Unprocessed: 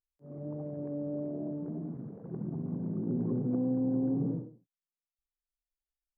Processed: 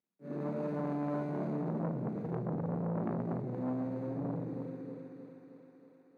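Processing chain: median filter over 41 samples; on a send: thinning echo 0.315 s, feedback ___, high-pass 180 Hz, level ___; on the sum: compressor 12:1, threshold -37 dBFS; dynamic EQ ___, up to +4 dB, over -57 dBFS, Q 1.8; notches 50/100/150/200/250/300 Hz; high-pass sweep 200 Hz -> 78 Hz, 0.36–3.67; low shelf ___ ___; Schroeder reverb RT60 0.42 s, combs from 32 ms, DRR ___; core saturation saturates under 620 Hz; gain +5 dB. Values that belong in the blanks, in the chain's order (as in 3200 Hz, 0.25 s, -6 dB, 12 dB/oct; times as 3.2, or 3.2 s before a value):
70%, -14 dB, 440 Hz, 89 Hz, -6.5 dB, 3.5 dB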